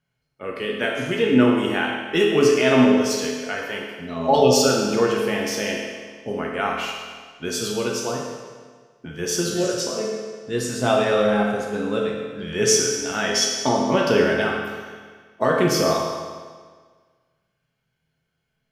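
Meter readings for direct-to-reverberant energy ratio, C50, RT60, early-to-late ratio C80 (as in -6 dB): -2.5 dB, 1.0 dB, 1.6 s, 3.0 dB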